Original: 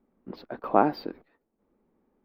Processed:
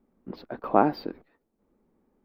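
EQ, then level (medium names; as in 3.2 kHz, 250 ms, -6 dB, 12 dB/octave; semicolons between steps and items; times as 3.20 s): bass shelf 210 Hz +4 dB; 0.0 dB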